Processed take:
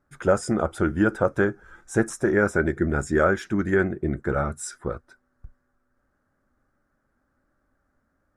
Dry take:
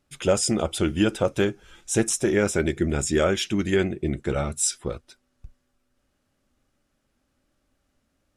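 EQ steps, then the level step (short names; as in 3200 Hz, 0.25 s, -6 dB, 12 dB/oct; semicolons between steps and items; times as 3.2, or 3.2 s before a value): resonant high shelf 2100 Hz -10.5 dB, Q 3; 0.0 dB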